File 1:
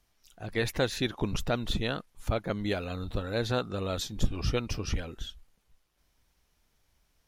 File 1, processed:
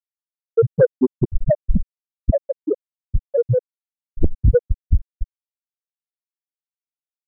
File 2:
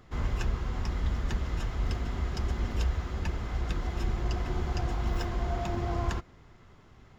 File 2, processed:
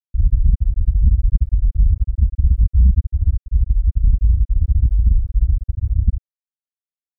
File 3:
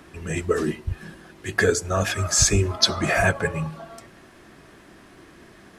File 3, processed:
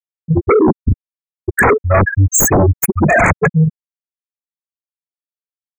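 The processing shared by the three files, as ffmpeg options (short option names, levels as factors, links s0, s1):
-af "afftfilt=real='re*gte(hypot(re,im),0.316)':imag='im*gte(hypot(re,im),0.316)':win_size=1024:overlap=0.75,acontrast=50,aeval=exprs='0.891*sin(PI/2*5.62*val(0)/0.891)':c=same,agate=range=0.0224:threshold=0.0355:ratio=3:detection=peak,asuperstop=centerf=4000:order=20:qfactor=0.97,volume=0.531"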